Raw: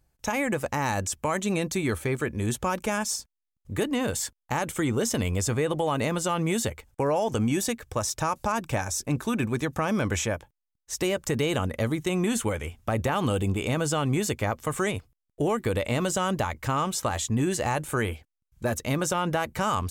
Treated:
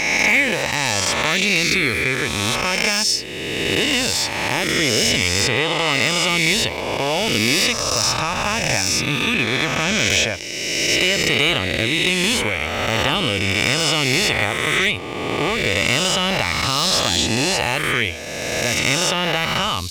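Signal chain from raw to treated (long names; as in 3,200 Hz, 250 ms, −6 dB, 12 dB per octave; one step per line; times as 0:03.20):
peak hold with a rise ahead of every peak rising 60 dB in 2.17 s
flat-topped bell 3,300 Hz +14 dB
hard clipping −8.5 dBFS, distortion −22 dB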